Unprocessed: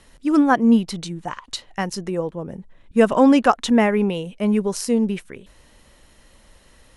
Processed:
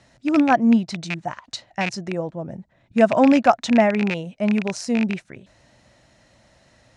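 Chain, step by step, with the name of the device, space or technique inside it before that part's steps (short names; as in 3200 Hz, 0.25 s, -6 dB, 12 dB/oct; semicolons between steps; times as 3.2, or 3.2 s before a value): car door speaker with a rattle (rattling part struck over -28 dBFS, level -11 dBFS; speaker cabinet 84–7300 Hz, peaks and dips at 120 Hz +9 dB, 440 Hz -8 dB, 660 Hz +8 dB, 1100 Hz -5 dB, 3100 Hz -6 dB); gain -1 dB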